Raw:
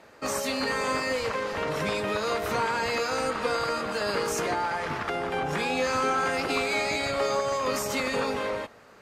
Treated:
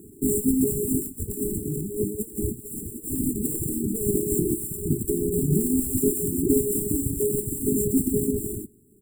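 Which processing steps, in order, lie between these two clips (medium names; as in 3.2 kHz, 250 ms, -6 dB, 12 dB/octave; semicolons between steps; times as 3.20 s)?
square wave that keeps the level; reverb removal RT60 1.4 s; 1.06–3.09 s: compressor with a negative ratio -31 dBFS, ratio -0.5; brick-wall FIR band-stop 430–7200 Hz; echo from a far wall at 18 m, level -29 dB; trim +8.5 dB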